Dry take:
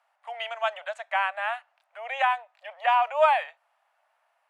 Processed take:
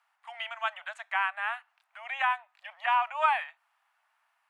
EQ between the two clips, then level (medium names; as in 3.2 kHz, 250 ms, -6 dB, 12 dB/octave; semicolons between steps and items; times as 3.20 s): high-pass 940 Hz 24 dB/octave; dynamic bell 5.4 kHz, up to -8 dB, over -49 dBFS, Q 0.9; 0.0 dB